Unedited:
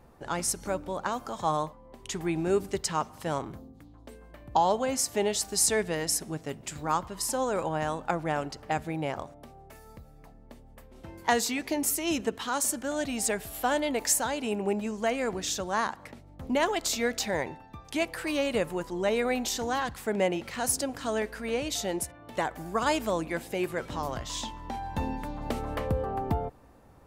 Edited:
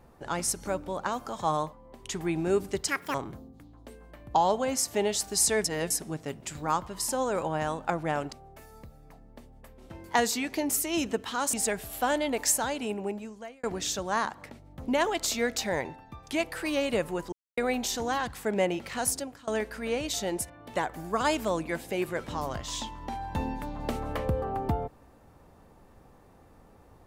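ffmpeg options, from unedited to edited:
ffmpeg -i in.wav -filter_complex "[0:a]asplit=11[link_01][link_02][link_03][link_04][link_05][link_06][link_07][link_08][link_09][link_10][link_11];[link_01]atrim=end=2.884[link_12];[link_02]atrim=start=2.88:end=3.35,asetpts=PTS-STARTPTS,asetrate=78498,aresample=44100,atrim=end_sample=11644,asetpts=PTS-STARTPTS[link_13];[link_03]atrim=start=3.346:end=5.852[link_14];[link_04]atrim=start=5.848:end=6.112,asetpts=PTS-STARTPTS,areverse[link_15];[link_05]atrim=start=6.108:end=8.532[link_16];[link_06]atrim=start=9.458:end=12.672[link_17];[link_07]atrim=start=13.148:end=15.25,asetpts=PTS-STARTPTS,afade=type=out:start_time=1.162:duration=0.94[link_18];[link_08]atrim=start=15.25:end=18.94,asetpts=PTS-STARTPTS,afade=type=in:duration=0.004:curve=hsin,afade=type=out:start_time=3.686:duration=0.004:curve=hsin[link_19];[link_09]atrim=start=18.94:end=19.19,asetpts=PTS-STARTPTS,volume=0[link_20];[link_10]atrim=start=19.19:end=21.09,asetpts=PTS-STARTPTS,afade=type=in:duration=0.004:curve=hsin,afade=type=out:start_time=1.47:duration=0.43:silence=0.0668344[link_21];[link_11]atrim=start=21.09,asetpts=PTS-STARTPTS,afade=type=in:duration=0.004:curve=hsin:silence=0.0668344[link_22];[link_12][link_13]acrossfade=duration=0.004:curve1=hsin:curve2=hsin[link_23];[link_23][link_14]acrossfade=duration=0.004:curve1=hsin:curve2=hsin[link_24];[link_24][link_15]acrossfade=duration=0.004:curve1=hsin:curve2=hsin[link_25];[link_25][link_16]acrossfade=duration=0.004:curve1=hsin:curve2=hsin[link_26];[link_26][link_17]acrossfade=duration=0.004:curve1=hsin:curve2=hsin[link_27];[link_18][link_19][link_20][link_21][link_22]concat=n=5:v=0:a=1[link_28];[link_27][link_28]acrossfade=duration=0.004:curve1=hsin:curve2=hsin" out.wav

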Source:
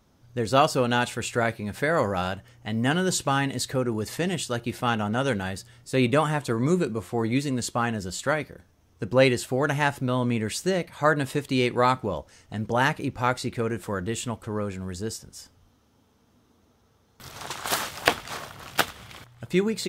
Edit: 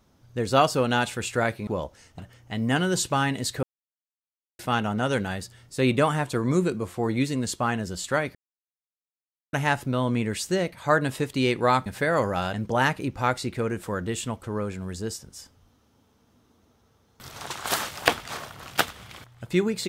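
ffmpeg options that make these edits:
ffmpeg -i in.wav -filter_complex "[0:a]asplit=9[link_01][link_02][link_03][link_04][link_05][link_06][link_07][link_08][link_09];[link_01]atrim=end=1.672[link_10];[link_02]atrim=start=12.008:end=12.532[link_11];[link_03]atrim=start=2.338:end=3.78,asetpts=PTS-STARTPTS,afade=type=out:start_time=1.438:duration=0.004:curve=hsin[link_12];[link_04]atrim=start=3.78:end=4.74,asetpts=PTS-STARTPTS,volume=0[link_13];[link_05]atrim=start=4.74:end=8.5,asetpts=PTS-STARTPTS,afade=type=in:duration=0.004:curve=hsin,afade=type=out:start_time=3.756:duration=0.004:curve=hsin[link_14];[link_06]atrim=start=8.5:end=9.68,asetpts=PTS-STARTPTS,volume=0[link_15];[link_07]atrim=start=9.68:end=12.012,asetpts=PTS-STARTPTS,afade=type=in:duration=0.004:curve=hsin[link_16];[link_08]atrim=start=1.668:end=2.342[link_17];[link_09]atrim=start=12.528[link_18];[link_10][link_11]acrossfade=duration=0.004:curve1=hsin:curve2=hsin[link_19];[link_12][link_13][link_14][link_15][link_16]concat=n=5:v=0:a=1[link_20];[link_19][link_20]acrossfade=duration=0.004:curve1=hsin:curve2=hsin[link_21];[link_21][link_17]acrossfade=duration=0.004:curve1=hsin:curve2=hsin[link_22];[link_22][link_18]acrossfade=duration=0.004:curve1=hsin:curve2=hsin" out.wav

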